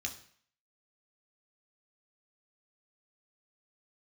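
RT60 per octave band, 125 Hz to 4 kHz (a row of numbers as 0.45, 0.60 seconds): 0.50, 0.50, 0.55, 0.60, 0.60, 0.55 seconds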